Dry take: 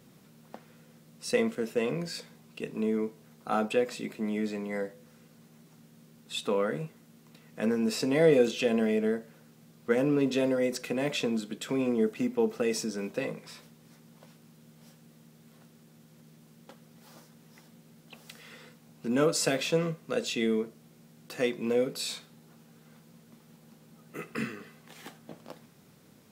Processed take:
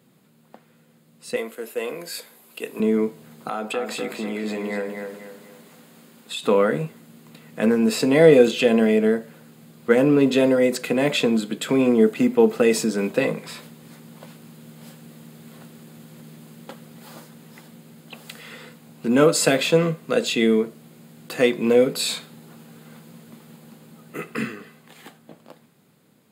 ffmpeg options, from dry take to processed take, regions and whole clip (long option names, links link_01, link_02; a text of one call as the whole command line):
ffmpeg -i in.wav -filter_complex "[0:a]asettb=1/sr,asplit=3[link_01][link_02][link_03];[link_01]atrim=end=1.364[link_04];[link_02]atrim=start=1.36:end=2.8,asetpts=PTS-STARTPTS,afade=type=in:duration=0.004:curve=qsin,afade=type=out:start_time=1.436:duration=0.004:curve=qsin,highpass=390,equalizer=frequency=12000:width_type=o:width=0.61:gain=14[link_05];[link_03]atrim=start=2.796[link_06];[link_04][link_05]acrossfade=duration=0.004:curve1=hsin:curve2=qsin[link_07];[link_07][link_06]acrossfade=duration=0.004:curve1=qsin:curve2=hsin,asettb=1/sr,asplit=3[link_08][link_09][link_10];[link_08]atrim=end=3.494[link_11];[link_09]atrim=start=3.49:end=6.44,asetpts=PTS-STARTPTS,afade=type=in:duration=0.004:curve=qsin,afade=type=out:start_time=2.946:duration=0.004:curve=qsin,highpass=frequency=300:poles=1,acompressor=threshold=-38dB:ratio=3:attack=3.2:release=140:knee=1:detection=peak,asplit=2[link_12][link_13];[link_13]adelay=245,lowpass=frequency=4300:poles=1,volume=-5dB,asplit=2[link_14][link_15];[link_15]adelay=245,lowpass=frequency=4300:poles=1,volume=0.39,asplit=2[link_16][link_17];[link_17]adelay=245,lowpass=frequency=4300:poles=1,volume=0.39,asplit=2[link_18][link_19];[link_19]adelay=245,lowpass=frequency=4300:poles=1,volume=0.39,asplit=2[link_20][link_21];[link_21]adelay=245,lowpass=frequency=4300:poles=1,volume=0.39[link_22];[link_12][link_14][link_16][link_18][link_20][link_22]amix=inputs=6:normalize=0,atrim=end_sample=130095[link_23];[link_10]atrim=start=6.436[link_24];[link_11][link_23]acrossfade=duration=0.004:curve1=hsin:curve2=qsin[link_25];[link_25][link_24]acrossfade=duration=0.004:curve1=qsin:curve2=hsin,equalizer=frequency=5700:width=7.1:gain=-13.5,dynaudnorm=framelen=280:gausssize=17:maxgain=15dB,highpass=110,volume=-1dB" out.wav